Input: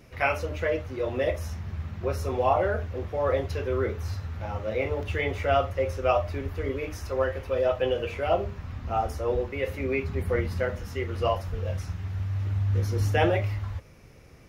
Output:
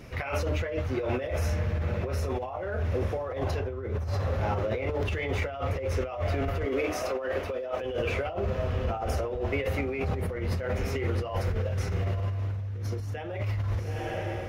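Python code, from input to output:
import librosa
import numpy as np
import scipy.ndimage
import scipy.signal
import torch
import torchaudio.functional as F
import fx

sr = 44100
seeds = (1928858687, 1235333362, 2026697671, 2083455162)

p1 = fx.tilt_eq(x, sr, slope=-1.5, at=(3.59, 4.09), fade=0.02)
p2 = fx.steep_highpass(p1, sr, hz=190.0, slope=72, at=(6.65, 7.81))
p3 = p2 + fx.echo_diffused(p2, sr, ms=951, feedback_pct=46, wet_db=-15, dry=0)
p4 = fx.over_compress(p3, sr, threshold_db=-32.0, ratio=-1.0)
p5 = fx.high_shelf(p4, sr, hz=6100.0, db=-4.5)
p6 = 10.0 ** (-29.0 / 20.0) * np.tanh(p5 / 10.0 ** (-29.0 / 20.0))
y = p5 + (p6 * 10.0 ** (-8.0 / 20.0))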